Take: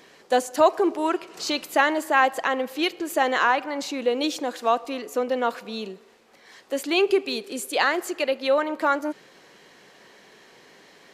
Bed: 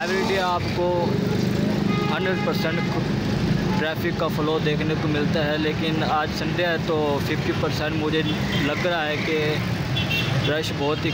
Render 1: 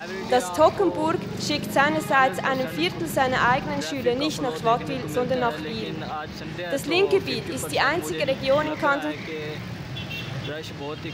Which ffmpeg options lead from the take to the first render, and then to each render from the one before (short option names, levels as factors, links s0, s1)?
-filter_complex "[1:a]volume=0.335[s0];[0:a][s0]amix=inputs=2:normalize=0"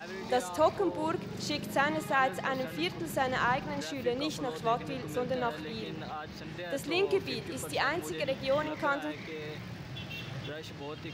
-af "volume=0.376"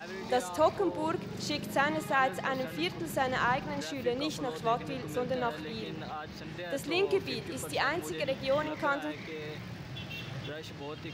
-af anull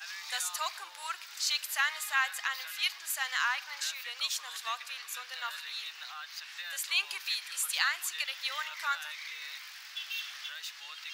-af "highpass=f=1200:w=0.5412,highpass=f=1200:w=1.3066,highshelf=f=3300:g=11.5"